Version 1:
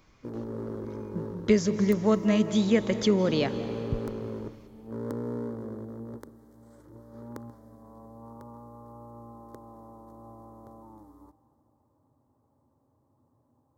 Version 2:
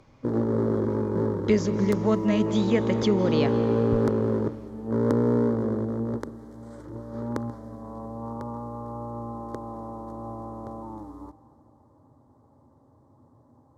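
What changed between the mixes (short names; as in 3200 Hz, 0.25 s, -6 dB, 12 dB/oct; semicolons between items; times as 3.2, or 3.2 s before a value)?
background +11.5 dB; master: add air absorption 53 m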